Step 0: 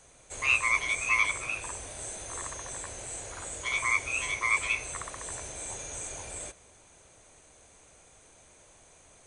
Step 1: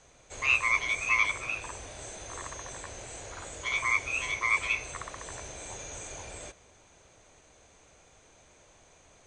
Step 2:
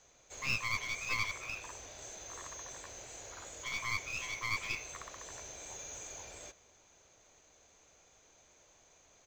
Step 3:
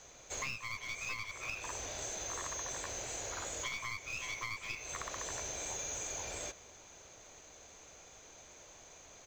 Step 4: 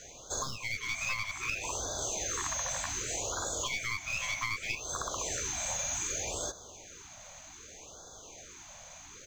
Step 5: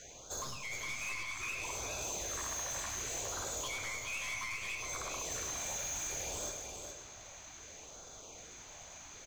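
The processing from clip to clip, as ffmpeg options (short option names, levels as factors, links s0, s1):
-af "lowpass=f=6700:w=0.5412,lowpass=f=6700:w=1.3066"
-af "bass=f=250:g=-4,treble=f=4000:g=6,aresample=16000,aeval=exprs='clip(val(0),-1,0.02)':c=same,aresample=44100,acrusher=bits=6:mode=log:mix=0:aa=0.000001,volume=0.447"
-af "acompressor=threshold=0.00562:ratio=16,volume=2.66"
-af "afftfilt=real='re*(1-between(b*sr/1024,340*pow(2400/340,0.5+0.5*sin(2*PI*0.65*pts/sr))/1.41,340*pow(2400/340,0.5+0.5*sin(2*PI*0.65*pts/sr))*1.41))':imag='im*(1-between(b*sr/1024,340*pow(2400/340,0.5+0.5*sin(2*PI*0.65*pts/sr))/1.41,340*pow(2400/340,0.5+0.5*sin(2*PI*0.65*pts/sr))*1.41))':win_size=1024:overlap=0.75,volume=2.11"
-filter_complex "[0:a]asplit=2[s0][s1];[s1]aecho=0:1:104|231:0.335|0.133[s2];[s0][s2]amix=inputs=2:normalize=0,asoftclip=type=tanh:threshold=0.0224,asplit=2[s3][s4];[s4]aecho=0:1:413:0.473[s5];[s3][s5]amix=inputs=2:normalize=0,volume=0.75"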